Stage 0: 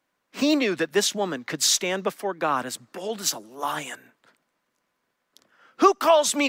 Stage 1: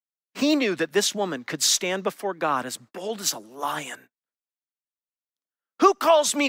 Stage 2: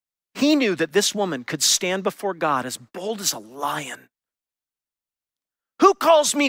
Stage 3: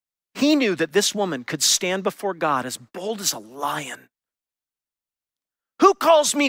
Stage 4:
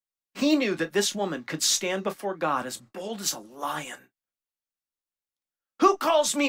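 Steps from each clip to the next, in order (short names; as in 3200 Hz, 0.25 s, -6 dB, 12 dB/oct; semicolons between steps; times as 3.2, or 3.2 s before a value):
gate -46 dBFS, range -39 dB
low shelf 97 Hz +10 dB; gain +2.5 dB
nothing audible
reverb, pre-delay 4 ms, DRR 6.5 dB; gain -6 dB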